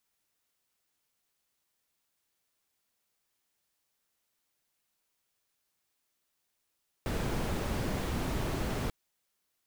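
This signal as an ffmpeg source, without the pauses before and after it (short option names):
-f lavfi -i "anoisesrc=c=brown:a=0.117:d=1.84:r=44100:seed=1"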